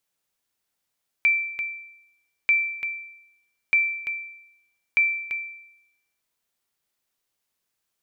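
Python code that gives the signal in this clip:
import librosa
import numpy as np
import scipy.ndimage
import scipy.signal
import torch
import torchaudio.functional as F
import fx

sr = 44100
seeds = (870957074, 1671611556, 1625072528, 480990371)

y = fx.sonar_ping(sr, hz=2340.0, decay_s=0.83, every_s=1.24, pings=4, echo_s=0.34, echo_db=-8.5, level_db=-13.0)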